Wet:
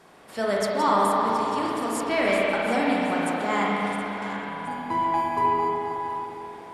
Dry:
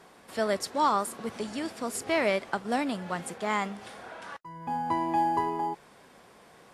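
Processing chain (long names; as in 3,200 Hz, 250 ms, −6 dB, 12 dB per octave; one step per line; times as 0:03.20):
feedback delay that plays each chunk backwards 361 ms, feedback 59%, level −9.5 dB
spring reverb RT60 3.1 s, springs 35/53 ms, chirp 25 ms, DRR −4.5 dB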